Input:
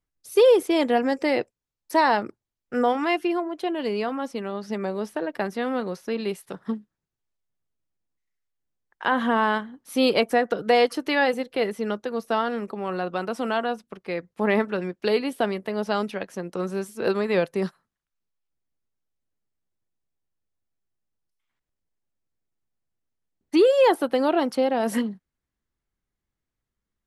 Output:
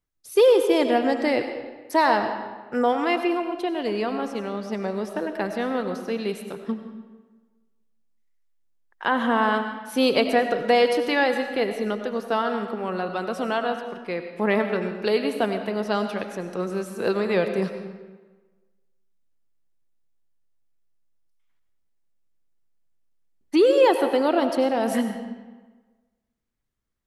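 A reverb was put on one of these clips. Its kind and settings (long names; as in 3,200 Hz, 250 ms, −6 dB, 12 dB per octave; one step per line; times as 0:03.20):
comb and all-pass reverb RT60 1.3 s, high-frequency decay 0.75×, pre-delay 55 ms, DRR 7 dB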